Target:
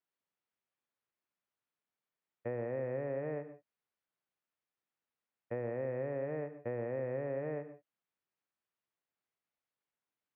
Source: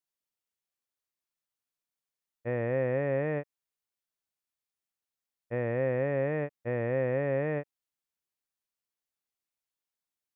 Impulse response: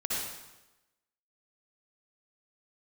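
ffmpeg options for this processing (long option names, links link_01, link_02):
-filter_complex "[0:a]acrossover=split=390|930[link_01][link_02][link_03];[link_01]acompressor=threshold=-47dB:ratio=4[link_04];[link_02]acompressor=threshold=-43dB:ratio=4[link_05];[link_03]acompressor=threshold=-57dB:ratio=4[link_06];[link_04][link_05][link_06]amix=inputs=3:normalize=0,highpass=100,lowpass=2400,asplit=2[link_07][link_08];[1:a]atrim=start_sample=2205,afade=type=out:start_time=0.19:duration=0.01,atrim=end_sample=8820,asetrate=33957,aresample=44100[link_09];[link_08][link_09]afir=irnorm=-1:irlink=0,volume=-15.5dB[link_10];[link_07][link_10]amix=inputs=2:normalize=0,volume=1.5dB"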